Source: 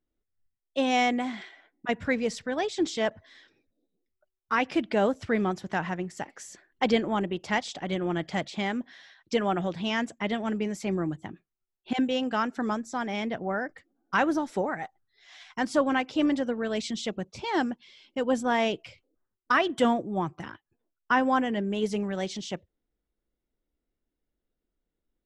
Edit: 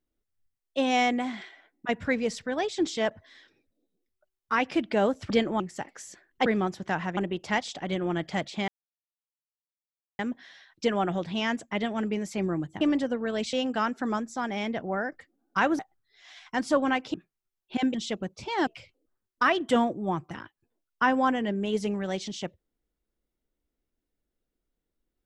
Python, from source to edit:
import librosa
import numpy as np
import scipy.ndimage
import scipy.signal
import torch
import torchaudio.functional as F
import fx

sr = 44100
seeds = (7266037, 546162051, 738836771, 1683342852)

y = fx.edit(x, sr, fx.swap(start_s=5.3, length_s=0.71, other_s=6.87, other_length_s=0.3),
    fx.insert_silence(at_s=8.68, length_s=1.51),
    fx.swap(start_s=11.3, length_s=0.8, other_s=16.18, other_length_s=0.72),
    fx.cut(start_s=14.36, length_s=0.47),
    fx.cut(start_s=17.63, length_s=1.13), tone=tone)